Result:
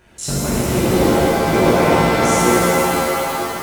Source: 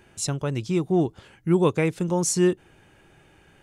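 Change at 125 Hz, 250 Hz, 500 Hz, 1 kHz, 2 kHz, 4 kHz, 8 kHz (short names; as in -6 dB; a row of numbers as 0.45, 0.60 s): +6.0, +7.0, +9.5, +17.5, +16.5, +13.0, +7.5 dB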